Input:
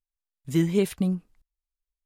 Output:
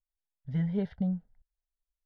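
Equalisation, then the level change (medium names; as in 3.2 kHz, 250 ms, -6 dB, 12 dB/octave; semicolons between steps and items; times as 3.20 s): tape spacing loss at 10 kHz 43 dB; static phaser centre 1.7 kHz, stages 8; band-stop 4 kHz, Q 14; 0.0 dB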